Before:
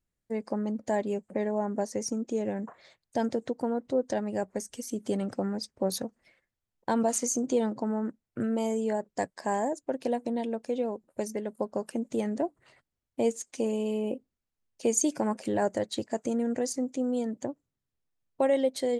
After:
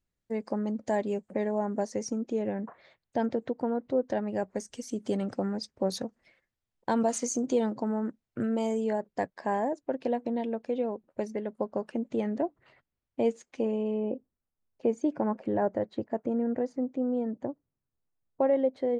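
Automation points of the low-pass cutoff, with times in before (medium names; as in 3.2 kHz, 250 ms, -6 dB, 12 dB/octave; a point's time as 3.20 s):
1.80 s 6.9 kHz
2.56 s 3 kHz
4.18 s 3 kHz
4.61 s 6.3 kHz
8.70 s 6.3 kHz
9.22 s 3.2 kHz
13.35 s 3.2 kHz
14.15 s 1.4 kHz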